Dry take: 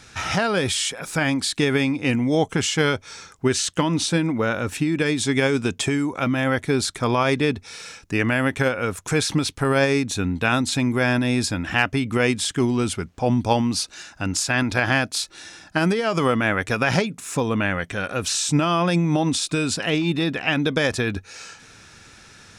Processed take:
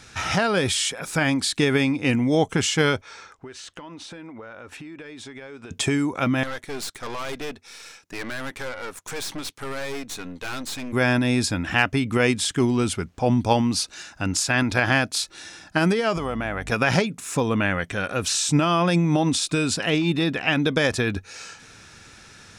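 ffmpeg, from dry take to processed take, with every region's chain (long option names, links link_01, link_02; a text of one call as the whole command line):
ffmpeg -i in.wav -filter_complex "[0:a]asettb=1/sr,asplit=3[link_01][link_02][link_03];[link_01]atrim=end=3.014[link_04];[link_02]atrim=start=3.01:end=5.71,asetpts=PTS-STARTPTS,afade=type=in:duration=0.004:curve=qsin,afade=type=out:start_time=2.696:duration=0.004:curve=qsin,equalizer=frequency=150:width_type=o:width=1.6:gain=-6.5,asplit=2[link_05][link_06];[link_06]highpass=frequency=720:poles=1,volume=8dB,asoftclip=type=tanh:threshold=-8dB[link_07];[link_05][link_07]amix=inputs=2:normalize=0,lowpass=frequency=1300:poles=1,volume=-6dB,acompressor=threshold=-36dB:ratio=10:attack=3.2:release=140:knee=1:detection=peak[link_08];[link_03]atrim=start=5.706[link_09];[link_04][link_08]acrossfade=duration=0.004:curve1=hsin:curve2=qsin[link_10];[link_10][link_09]acrossfade=duration=0.004:curve1=qsin:curve2=hsin,asettb=1/sr,asplit=3[link_11][link_12][link_13];[link_11]atrim=end=6.434[link_14];[link_12]atrim=start=6.43:end=10.93,asetpts=PTS-STARTPTS,afade=type=in:duration=0.004:curve=qsin,afade=type=out:start_time=4.496:duration=0.004:curve=qsin,highpass=frequency=440:poles=1,aeval=exprs='(tanh(25.1*val(0)+0.8)-tanh(0.8))/25.1':channel_layout=same[link_15];[link_13]atrim=start=10.926[link_16];[link_14][link_15]acrossfade=duration=0.004:curve1=hsin:curve2=qsin[link_17];[link_17][link_16]acrossfade=duration=0.004:curve1=qsin:curve2=hsin,asettb=1/sr,asplit=3[link_18][link_19][link_20];[link_18]atrim=end=16.164[link_21];[link_19]atrim=start=16.16:end=16.72,asetpts=PTS-STARTPTS,afade=type=in:duration=0.004:curve=qsin,afade=type=out:start_time=0.556:duration=0.004:curve=qsin,equalizer=frequency=730:width_type=o:width=0.56:gain=7,acompressor=threshold=-26dB:ratio=3:attack=3.2:release=140:knee=1:detection=peak,aeval=exprs='val(0)+0.0141*(sin(2*PI*50*n/s)+sin(2*PI*2*50*n/s)/2+sin(2*PI*3*50*n/s)/3+sin(2*PI*4*50*n/s)/4+sin(2*PI*5*50*n/s)/5)':channel_layout=same[link_22];[link_20]atrim=start=16.716[link_23];[link_21][link_22]acrossfade=duration=0.004:curve1=hsin:curve2=qsin[link_24];[link_24][link_23]acrossfade=duration=0.004:curve1=qsin:curve2=hsin" out.wav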